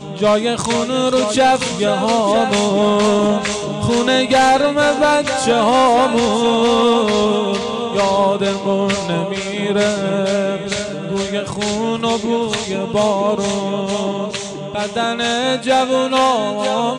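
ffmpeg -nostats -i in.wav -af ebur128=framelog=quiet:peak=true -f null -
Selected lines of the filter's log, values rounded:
Integrated loudness:
  I:         -16.3 LUFS
  Threshold: -26.3 LUFS
Loudness range:
  LRA:         5.0 LU
  Threshold: -36.3 LUFS
  LRA low:   -19.0 LUFS
  LRA high:  -14.0 LUFS
True peak:
  Peak:       -6.8 dBFS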